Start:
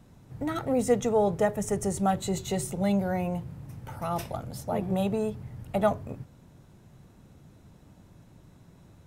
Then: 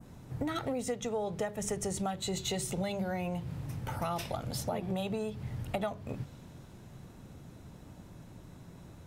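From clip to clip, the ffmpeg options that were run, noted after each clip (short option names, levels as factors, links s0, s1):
-af "bandreject=f=50:t=h:w=6,bandreject=f=100:t=h:w=6,bandreject=f=150:t=h:w=6,bandreject=f=200:t=h:w=6,adynamicequalizer=threshold=0.00316:dfrequency=3600:dqfactor=0.71:tfrequency=3600:tqfactor=0.71:attack=5:release=100:ratio=0.375:range=4:mode=boostabove:tftype=bell,acompressor=threshold=0.0178:ratio=10,volume=1.58"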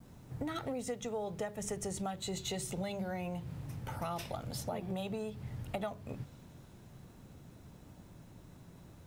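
-af "acrusher=bits=10:mix=0:aa=0.000001,volume=0.631"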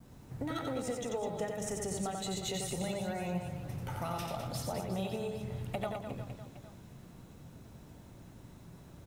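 -af "aecho=1:1:90|207|359.1|556.8|813.9:0.631|0.398|0.251|0.158|0.1"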